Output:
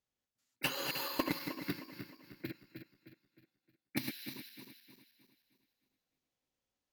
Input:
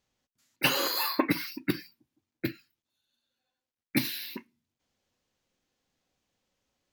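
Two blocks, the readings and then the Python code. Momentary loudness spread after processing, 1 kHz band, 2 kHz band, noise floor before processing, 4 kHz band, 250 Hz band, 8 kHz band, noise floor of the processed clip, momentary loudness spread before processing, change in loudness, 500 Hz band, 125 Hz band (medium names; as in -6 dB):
19 LU, -9.0 dB, -8.5 dB, under -85 dBFS, -9.5 dB, -9.0 dB, -9.0 dB, under -85 dBFS, 11 LU, -9.5 dB, -8.5 dB, -8.0 dB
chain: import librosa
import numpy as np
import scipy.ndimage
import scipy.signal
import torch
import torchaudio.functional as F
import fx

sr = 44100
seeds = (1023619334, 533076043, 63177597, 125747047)

y = fx.reverse_delay_fb(x, sr, ms=155, feedback_pct=64, wet_db=-4)
y = fx.cheby_harmonics(y, sr, harmonics=(3,), levels_db=(-14,), full_scale_db=-9.5)
y = F.gain(torch.from_numpy(y), -5.0).numpy()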